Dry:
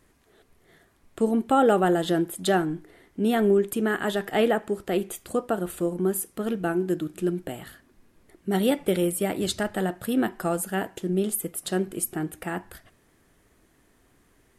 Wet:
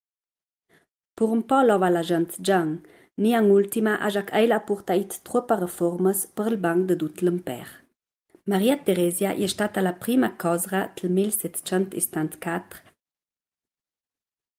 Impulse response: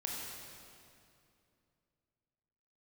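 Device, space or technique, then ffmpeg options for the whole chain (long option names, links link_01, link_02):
video call: -filter_complex "[0:a]asettb=1/sr,asplit=3[link_01][link_02][link_03];[link_01]atrim=end=4.564[link_04];[link_02]atrim=start=4.56:end=6.53,asetpts=PTS-STARTPTS,afade=type=in:duration=0.004:curve=qsin,afade=type=out:start_time=1.966:duration=0.004:curve=qsin,equalizer=frequency=800:width_type=o:width=0.33:gain=8,equalizer=frequency=2500:width_type=o:width=0.33:gain=-9,equalizer=frequency=6300:width_type=o:width=0.33:gain=4[link_05];[link_03]atrim=start=6.526[link_06];[link_04][link_05]acrossfade=duration=0.004:curve1=hsin:curve2=qsin[link_07];[link_07][link_06]acrossfade=duration=0.004:curve1=qsin:curve2=hsin,highpass=120,dynaudnorm=framelen=330:gausssize=3:maxgain=10dB,agate=range=-43dB:threshold=-47dB:ratio=16:detection=peak,volume=-5.5dB" -ar 48000 -c:a libopus -b:a 32k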